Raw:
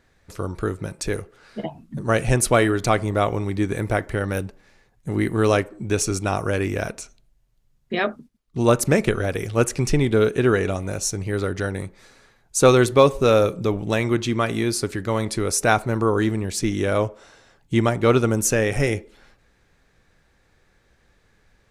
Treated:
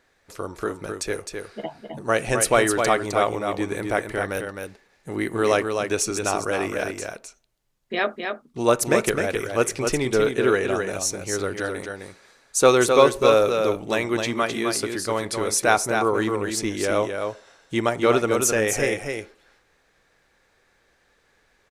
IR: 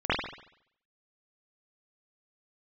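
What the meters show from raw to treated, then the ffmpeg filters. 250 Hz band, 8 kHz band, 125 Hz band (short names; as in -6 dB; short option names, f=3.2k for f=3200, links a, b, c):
-3.5 dB, +1.0 dB, -10.0 dB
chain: -filter_complex "[0:a]bass=f=250:g=-12,treble=f=4k:g=0,asplit=2[a][b];[b]aecho=0:1:260:0.531[c];[a][c]amix=inputs=2:normalize=0"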